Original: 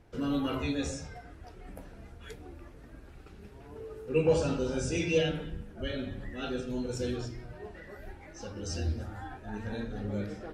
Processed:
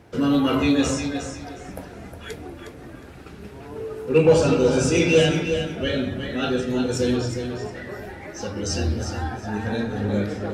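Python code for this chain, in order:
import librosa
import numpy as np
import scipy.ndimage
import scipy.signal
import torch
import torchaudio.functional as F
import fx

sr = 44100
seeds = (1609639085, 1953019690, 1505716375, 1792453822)

p1 = scipy.signal.sosfilt(scipy.signal.butter(2, 93.0, 'highpass', fs=sr, output='sos'), x)
p2 = np.clip(p1, -10.0 ** (-28.5 / 20.0), 10.0 ** (-28.5 / 20.0))
p3 = p1 + F.gain(torch.from_numpy(p2), -7.5).numpy()
p4 = fx.echo_feedback(p3, sr, ms=361, feedback_pct=24, wet_db=-8)
y = F.gain(torch.from_numpy(p4), 8.5).numpy()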